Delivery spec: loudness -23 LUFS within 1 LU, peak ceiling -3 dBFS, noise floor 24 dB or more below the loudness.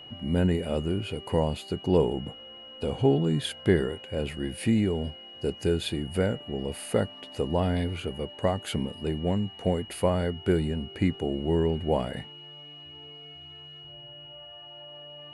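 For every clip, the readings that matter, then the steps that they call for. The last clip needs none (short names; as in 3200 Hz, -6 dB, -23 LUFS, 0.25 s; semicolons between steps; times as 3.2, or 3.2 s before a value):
steady tone 2900 Hz; tone level -44 dBFS; loudness -28.5 LUFS; peak -9.0 dBFS; loudness target -23.0 LUFS
-> notch 2900 Hz, Q 30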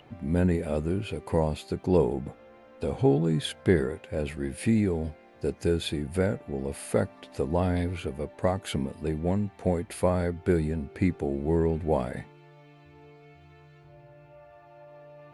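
steady tone none; loudness -28.5 LUFS; peak -9.0 dBFS; loudness target -23.0 LUFS
-> gain +5.5 dB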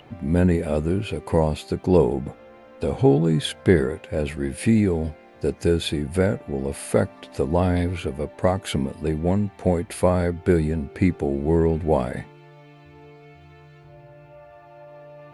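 loudness -23.0 LUFS; peak -3.5 dBFS; noise floor -48 dBFS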